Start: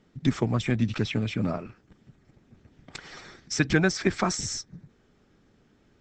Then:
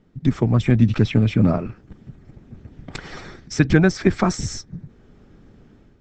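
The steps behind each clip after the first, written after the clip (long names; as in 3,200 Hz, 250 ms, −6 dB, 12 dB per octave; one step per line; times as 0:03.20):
spectral tilt −2 dB per octave
automatic gain control gain up to 8.5 dB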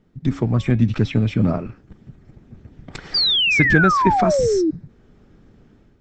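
hum removal 277.5 Hz, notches 19
sound drawn into the spectrogram fall, 0:03.14–0:04.71, 300–4,900 Hz −16 dBFS
level −1.5 dB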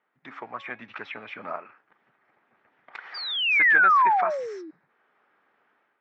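flat-topped band-pass 1,400 Hz, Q 0.91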